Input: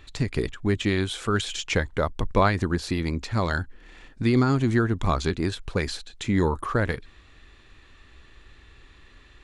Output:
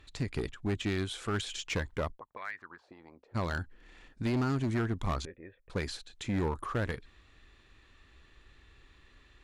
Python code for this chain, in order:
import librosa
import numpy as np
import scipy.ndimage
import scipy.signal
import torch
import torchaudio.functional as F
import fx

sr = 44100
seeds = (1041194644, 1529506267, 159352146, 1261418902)

y = fx.auto_wah(x, sr, base_hz=240.0, top_hz=1900.0, q=4.1, full_db=-17.5, direction='up', at=(2.12, 3.34), fade=0.02)
y = fx.formant_cascade(y, sr, vowel='e', at=(5.25, 5.7))
y = fx.clip_asym(y, sr, top_db=-21.5, bottom_db=-15.5)
y = y * librosa.db_to_amplitude(-7.5)